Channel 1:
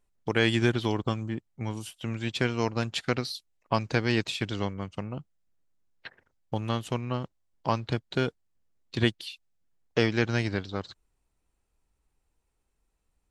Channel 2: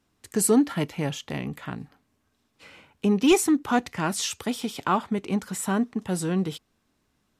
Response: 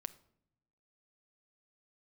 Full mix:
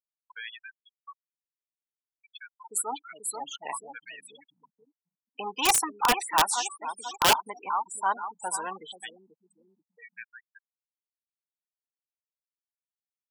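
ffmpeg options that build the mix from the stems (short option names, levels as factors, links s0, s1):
-filter_complex "[0:a]acrossover=split=1400[s0][s1];[s0]aeval=exprs='val(0)*(1-0.5/2+0.5/2*cos(2*PI*2.8*n/s))':c=same[s2];[s1]aeval=exprs='val(0)*(1-0.5/2-0.5/2*cos(2*PI*2.8*n/s))':c=same[s3];[s2][s3]amix=inputs=2:normalize=0,highpass=1100,volume=0.251,asplit=3[s4][s5][s6];[s5]volume=0.631[s7];[1:a]highshelf=f=3800:g=4,aexciter=amount=1.2:drive=3.3:freq=8800,adelay=2350,volume=0.841,asplit=2[s8][s9];[s9]volume=0.251[s10];[s6]apad=whole_len=429738[s11];[s8][s11]sidechaincompress=threshold=0.00112:ratio=8:attack=44:release=231[s12];[2:a]atrim=start_sample=2205[s13];[s7][s13]afir=irnorm=-1:irlink=0[s14];[s10]aecho=0:1:486|972|1458|1944|2430|2916|3402:1|0.48|0.23|0.111|0.0531|0.0255|0.0122[s15];[s4][s12][s14][s15]amix=inputs=4:normalize=0,afftfilt=real='re*gte(hypot(re,im),0.0282)':imag='im*gte(hypot(re,im),0.0282)':win_size=1024:overlap=0.75,highpass=f=910:t=q:w=5,aeval=exprs='(mod(4.73*val(0)+1,2)-1)/4.73':c=same"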